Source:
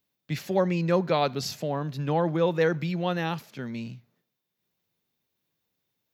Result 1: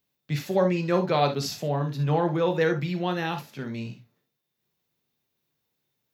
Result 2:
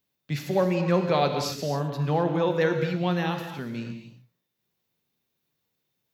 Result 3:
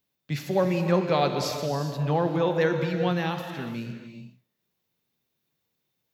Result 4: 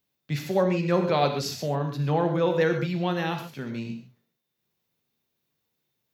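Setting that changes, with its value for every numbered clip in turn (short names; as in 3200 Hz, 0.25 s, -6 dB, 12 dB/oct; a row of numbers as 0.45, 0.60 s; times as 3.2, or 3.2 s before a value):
non-linear reverb, gate: 90, 290, 440, 160 ms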